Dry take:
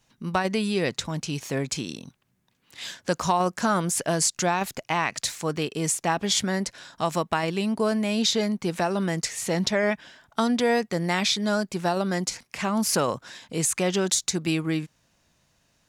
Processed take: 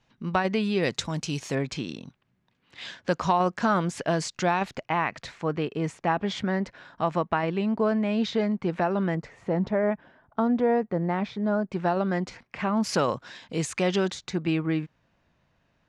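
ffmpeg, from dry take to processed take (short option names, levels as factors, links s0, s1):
-af "asetnsamples=n=441:p=0,asendcmd='0.83 lowpass f 8000;1.55 lowpass f 3500;4.85 lowpass f 2100;9.15 lowpass f 1100;11.71 lowpass f 2200;12.84 lowpass f 4400;14.11 lowpass f 2400',lowpass=3500"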